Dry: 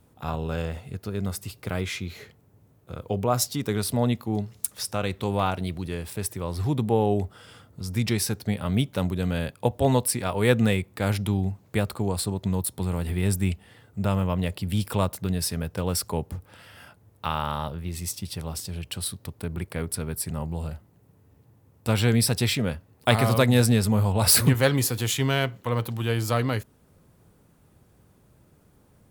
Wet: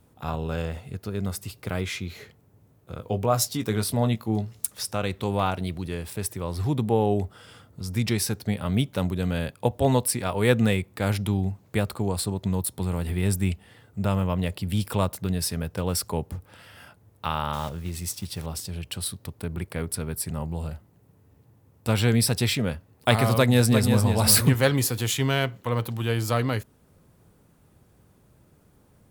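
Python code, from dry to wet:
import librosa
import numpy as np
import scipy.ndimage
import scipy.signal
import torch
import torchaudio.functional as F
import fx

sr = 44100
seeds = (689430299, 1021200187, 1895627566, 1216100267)

y = fx.doubler(x, sr, ms=18.0, db=-9.5, at=(2.97, 4.65))
y = fx.block_float(y, sr, bits=5, at=(17.53, 18.47))
y = fx.echo_throw(y, sr, start_s=23.37, length_s=0.65, ms=350, feedback_pct=10, wet_db=-6.0)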